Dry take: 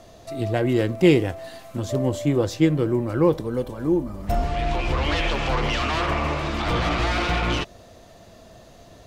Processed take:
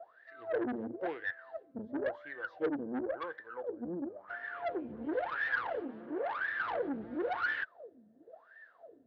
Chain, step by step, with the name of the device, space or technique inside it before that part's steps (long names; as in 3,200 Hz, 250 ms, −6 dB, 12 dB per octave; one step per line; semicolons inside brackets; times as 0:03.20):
wah-wah guitar rig (LFO wah 0.96 Hz 210–1,800 Hz, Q 20; tube saturation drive 39 dB, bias 0.4; loudspeaker in its box 110–4,200 Hz, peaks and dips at 140 Hz −7 dB, 210 Hz −7 dB, 480 Hz +5 dB, 1,100 Hz −5 dB, 1,600 Hz +9 dB, 2,500 Hz −5 dB)
0:05.81–0:06.39: parametric band 72 Hz −13.5 dB 1.7 octaves
level +8.5 dB